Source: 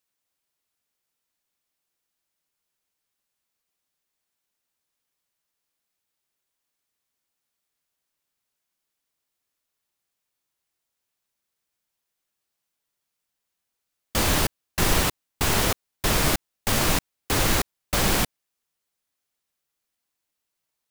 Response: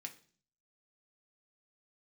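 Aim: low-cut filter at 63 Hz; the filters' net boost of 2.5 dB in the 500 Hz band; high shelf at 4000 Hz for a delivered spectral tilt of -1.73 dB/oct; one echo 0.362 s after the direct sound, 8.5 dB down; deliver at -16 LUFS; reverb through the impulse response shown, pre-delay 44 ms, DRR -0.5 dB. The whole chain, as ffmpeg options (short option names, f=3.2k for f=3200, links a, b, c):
-filter_complex "[0:a]highpass=63,equalizer=f=500:t=o:g=3,highshelf=f=4k:g=8,aecho=1:1:362:0.376,asplit=2[a][b];[1:a]atrim=start_sample=2205,adelay=44[c];[b][c]afir=irnorm=-1:irlink=0,volume=4dB[d];[a][d]amix=inputs=2:normalize=0"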